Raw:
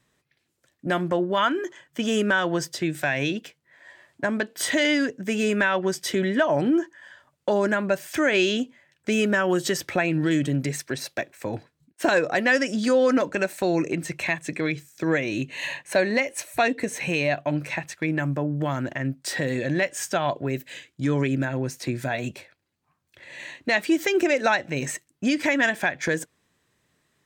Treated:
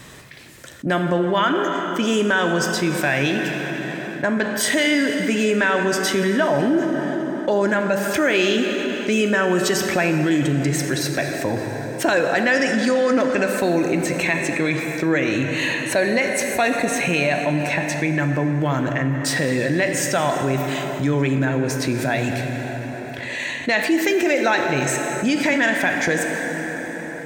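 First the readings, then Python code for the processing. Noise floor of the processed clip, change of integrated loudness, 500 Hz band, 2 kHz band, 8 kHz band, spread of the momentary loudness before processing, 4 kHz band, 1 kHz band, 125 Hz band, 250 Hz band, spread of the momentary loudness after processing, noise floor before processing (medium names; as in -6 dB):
-30 dBFS, +4.5 dB, +4.5 dB, +5.0 dB, +7.0 dB, 10 LU, +5.0 dB, +5.0 dB, +5.5 dB, +5.0 dB, 7 LU, -74 dBFS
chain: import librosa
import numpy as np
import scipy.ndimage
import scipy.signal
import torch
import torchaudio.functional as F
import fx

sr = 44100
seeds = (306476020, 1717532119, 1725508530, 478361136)

y = fx.rev_plate(x, sr, seeds[0], rt60_s=3.5, hf_ratio=0.7, predelay_ms=0, drr_db=5.5)
y = fx.env_flatten(y, sr, amount_pct=50)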